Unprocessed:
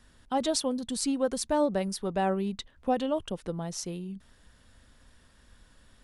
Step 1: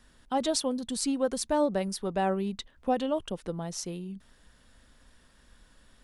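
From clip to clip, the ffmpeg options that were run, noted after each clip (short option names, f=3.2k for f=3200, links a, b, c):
-af "equalizer=f=91:w=1.7:g=-6"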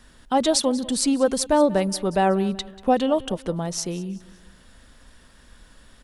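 -af "aecho=1:1:188|376|564:0.112|0.046|0.0189,volume=8dB"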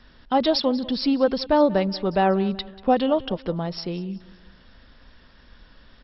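-ar 44100 -c:a mp2 -b:a 48k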